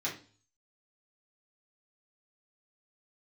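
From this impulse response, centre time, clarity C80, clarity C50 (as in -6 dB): 22 ms, 15.0 dB, 9.0 dB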